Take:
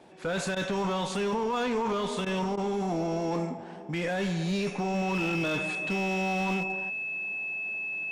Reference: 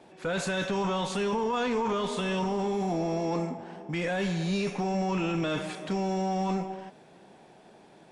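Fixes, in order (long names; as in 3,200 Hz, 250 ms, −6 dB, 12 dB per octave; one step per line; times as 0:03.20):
clipped peaks rebuilt −24 dBFS
notch filter 2,600 Hz, Q 30
repair the gap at 0:00.55/0:02.25/0:02.56, 12 ms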